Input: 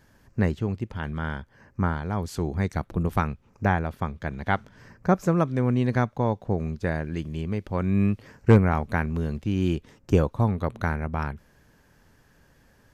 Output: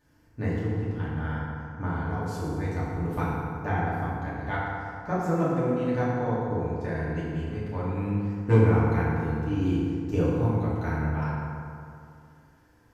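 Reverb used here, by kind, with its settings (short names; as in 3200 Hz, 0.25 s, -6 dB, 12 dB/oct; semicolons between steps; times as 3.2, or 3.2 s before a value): FDN reverb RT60 2.5 s, low-frequency decay 0.95×, high-frequency decay 0.5×, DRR -9 dB; gain -12.5 dB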